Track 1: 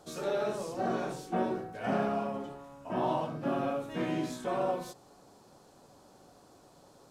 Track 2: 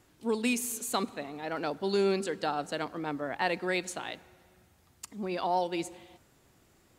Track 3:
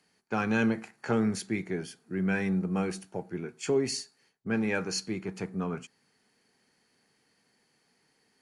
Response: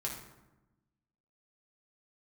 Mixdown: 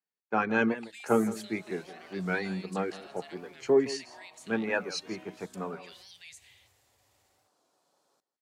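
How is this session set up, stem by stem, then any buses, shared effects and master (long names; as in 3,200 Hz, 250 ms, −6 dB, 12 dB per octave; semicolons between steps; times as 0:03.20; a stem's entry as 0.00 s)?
−10.5 dB, 1.10 s, bus A, no send, echo send −19 dB, high-pass filter 840 Hz 6 dB per octave
−10.0 dB, 0.50 s, bus A, no send, no echo send, Chebyshev band-stop filter 110–1,800 Hz, order 4; transient designer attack −7 dB, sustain +3 dB; automatic gain control gain up to 8 dB
+2.5 dB, 0.00 s, no bus, no send, echo send −16 dB, reverb reduction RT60 0.59 s; resonant band-pass 790 Hz, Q 0.5; multiband upward and downward expander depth 70%
bus A: 0.0 dB, high-pass filter 87 Hz; downward compressor 12 to 1, threshold −45 dBFS, peak gain reduction 12.5 dB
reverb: not used
echo: single-tap delay 164 ms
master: wow of a warped record 45 rpm, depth 100 cents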